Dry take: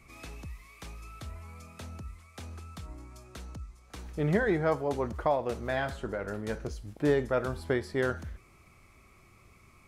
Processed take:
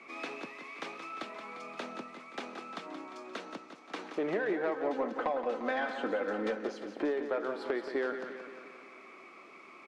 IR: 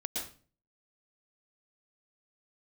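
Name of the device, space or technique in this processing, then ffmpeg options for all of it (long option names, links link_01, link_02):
AM radio: -filter_complex "[0:a]highpass=frequency=260:width=0.5412,highpass=frequency=260:width=1.3066,asettb=1/sr,asplit=3[link_01][link_02][link_03];[link_01]atrim=end=4.764[link_04];[link_02]atrim=start=4.76:end=6.57,asetpts=PTS-STARTPTS,afade=type=in:duration=0.004:curve=qsin,afade=type=out:start_time=1.806:duration=0.004:curve=qsin,aecho=1:1:3.9:0.86,atrim=end_sample=79821[link_05];[link_03]atrim=start=6.566[link_06];[link_04][link_05]acrossfade=duration=0.004:curve1=hsin:curve2=qsin[link_07];[link_07][link_06]acrossfade=duration=0.004:curve1=qsin:curve2=hsin,highpass=180,lowpass=3300,acompressor=threshold=-38dB:ratio=8,asoftclip=type=tanh:threshold=-31.5dB,aecho=1:1:175|350|525|700|875|1050|1225:0.355|0.209|0.124|0.0729|0.043|0.0254|0.015,volume=9dB"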